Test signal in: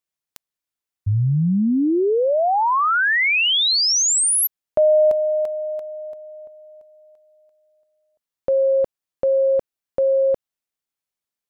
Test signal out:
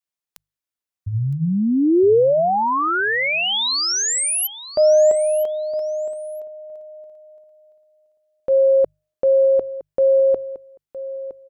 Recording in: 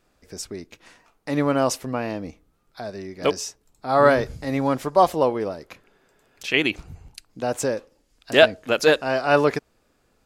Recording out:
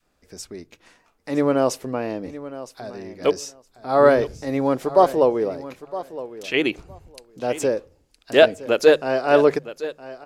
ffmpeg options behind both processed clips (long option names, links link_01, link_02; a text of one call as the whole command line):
ffmpeg -i in.wav -filter_complex "[0:a]bandreject=frequency=50:width_type=h:width=6,bandreject=frequency=100:width_type=h:width=6,bandreject=frequency=150:width_type=h:width=6,adynamicequalizer=threshold=0.0224:dfrequency=420:dqfactor=1.1:tfrequency=420:tqfactor=1.1:attack=5:release=100:ratio=0.375:range=4:mode=boostabove:tftype=bell,asplit=2[link_01][link_02];[link_02]aecho=0:1:964|1928:0.178|0.0267[link_03];[link_01][link_03]amix=inputs=2:normalize=0,volume=-3dB" out.wav